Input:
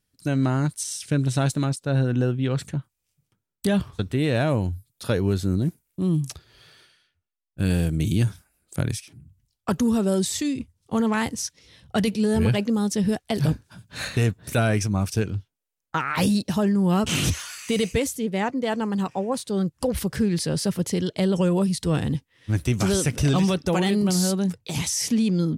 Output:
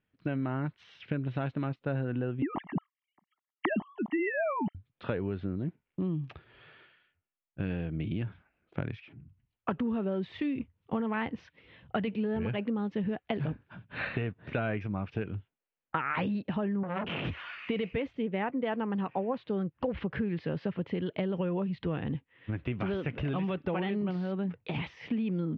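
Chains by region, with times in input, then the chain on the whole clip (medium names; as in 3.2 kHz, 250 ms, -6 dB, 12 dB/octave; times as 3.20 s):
2.42–4.75 s: formants replaced by sine waves + comb 1 ms, depth 92%
16.83–17.25 s: high-pass 67 Hz + hum notches 60/120/180/240/300/360/420 Hz + transformer saturation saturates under 1.3 kHz
whole clip: compression, threshold -27 dBFS; steep low-pass 2.9 kHz 36 dB/octave; bass shelf 92 Hz -11.5 dB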